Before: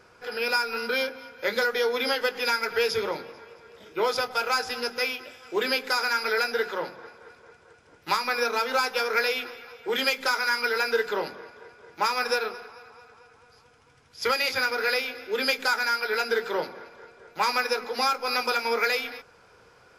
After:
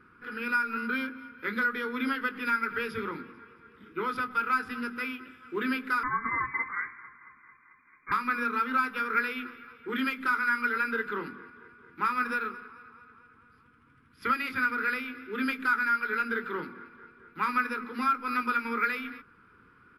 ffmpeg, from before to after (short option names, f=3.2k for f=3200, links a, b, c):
-filter_complex "[0:a]asettb=1/sr,asplit=3[a][b][c];[a]atrim=end=6.034[d];[b]atrim=start=6.03:end=8.12,asetpts=PTS-STARTPTS,afade=t=in:d=0.004:c=qsin,afade=t=out:st=2.086:d=0.004:c=qsin,lowpass=f=2.1k:t=q:w=0.5098,lowpass=f=2.1k:t=q:w=0.6013,lowpass=f=2.1k:t=q:w=0.9,lowpass=f=2.1k:t=q:w=2.563,afreqshift=-2500[e];[c]atrim=start=8.116[f];[d][e]acrossfade=d=0.004:c1=hsin:c2=qsin[g];[g][f]acrossfade=d=0.004:c1=qsin:c2=hsin,asettb=1/sr,asplit=3[h][i][j];[h]atrim=end=12.094[k];[i]atrim=start=12.09:end=12.58,asetpts=PTS-STARTPTS,afade=t=in:d=0.004:c=qsin,afade=t=out:st=0.486:d=0.004:c=qsin,acrusher=bits=7:mode=log:mix=0:aa=0.000001[l];[j]atrim=start=12.576[m];[k][l]acrossfade=d=0.004:c1=hsin:c2=qsin[n];[n][m]acrossfade=d=0.004:c1=qsin:c2=hsin,firequalizer=gain_entry='entry(130,0);entry(250,9);entry(620,-25);entry(1200,4);entry(1800,-2);entry(6300,-27);entry(9400,-11)':delay=0.05:min_phase=1,volume=-1.5dB"